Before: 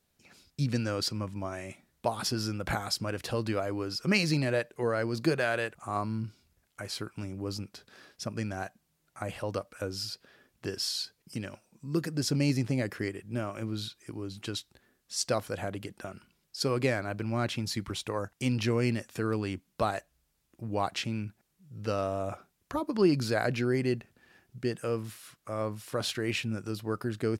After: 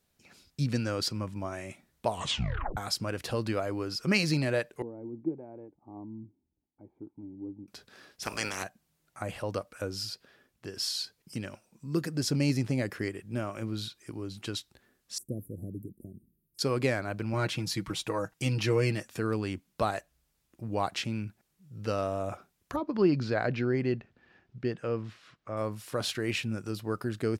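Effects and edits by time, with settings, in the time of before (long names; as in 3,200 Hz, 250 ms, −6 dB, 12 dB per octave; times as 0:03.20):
0:02.07: tape stop 0.70 s
0:04.82–0:07.68: formant resonators in series u
0:08.22–0:08.62: ceiling on every frequency bin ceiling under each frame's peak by 28 dB
0:10.13–0:10.75: fade out, to −7 dB
0:15.18–0:16.59: inverse Chebyshev band-stop filter 1,200–4,200 Hz, stop band 70 dB
0:17.33–0:19.03: comb filter 6.3 ms, depth 67%
0:22.76–0:25.57: high-frequency loss of the air 170 metres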